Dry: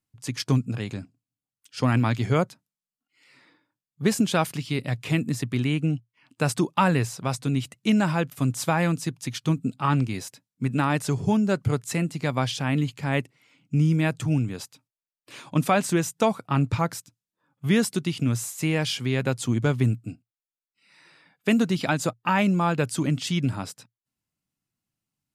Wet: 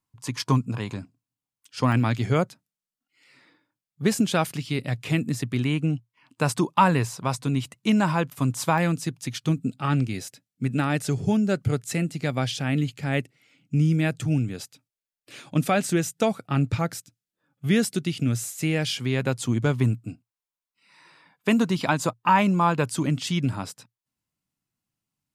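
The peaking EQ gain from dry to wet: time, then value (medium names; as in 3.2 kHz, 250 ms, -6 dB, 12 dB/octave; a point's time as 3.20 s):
peaking EQ 1 kHz 0.36 oct
+13.5 dB
from 0.95 s +6 dB
from 1.92 s -2 dB
from 5.64 s +6.5 dB
from 8.78 s -3 dB
from 9.49 s -10.5 dB
from 18.97 s +0.5 dB
from 19.76 s +9 dB
from 22.90 s +2.5 dB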